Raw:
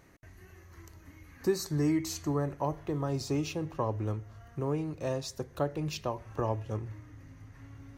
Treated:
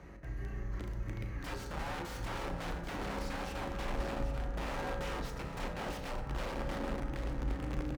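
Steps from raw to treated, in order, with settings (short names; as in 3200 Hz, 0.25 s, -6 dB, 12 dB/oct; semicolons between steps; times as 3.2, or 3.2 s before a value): octaver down 2 oct, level -5 dB; compressor 6:1, threshold -38 dBFS, peak gain reduction 15.5 dB; wrapped overs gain 41 dB; bell 72 Hz -14 dB 2.7 oct; notches 60/120/180/240/300/360/420/480 Hz; doubler 36 ms -11.5 dB; echo 0.787 s -9 dB; frequency shift +26 Hz; RIAA curve playback; reverb RT60 2.3 s, pre-delay 3 ms, DRR 5 dB; gain +6 dB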